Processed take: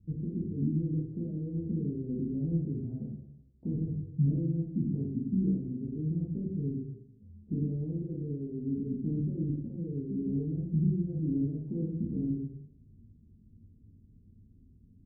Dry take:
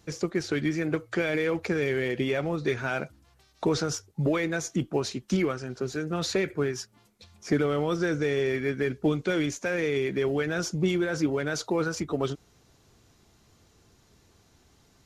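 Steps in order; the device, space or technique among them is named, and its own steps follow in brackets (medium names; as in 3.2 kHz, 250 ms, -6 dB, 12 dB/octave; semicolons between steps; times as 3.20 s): 7.92–8.67 s: bass shelf 250 Hz -9 dB; club heard from the street (peak limiter -21.5 dBFS, peak gain reduction 6 dB; low-pass 230 Hz 24 dB/octave; reverberation RT60 0.90 s, pre-delay 12 ms, DRR -5 dB); trim +1 dB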